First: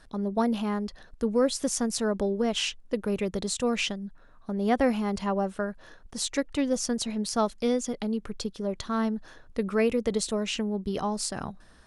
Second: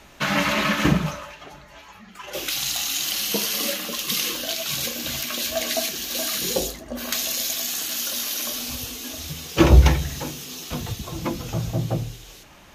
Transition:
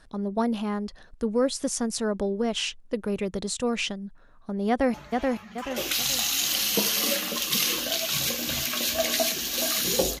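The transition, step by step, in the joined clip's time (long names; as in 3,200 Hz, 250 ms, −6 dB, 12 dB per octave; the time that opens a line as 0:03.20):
first
0:04.69–0:04.94: delay throw 430 ms, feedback 40%, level −2.5 dB
0:04.94: continue with second from 0:01.51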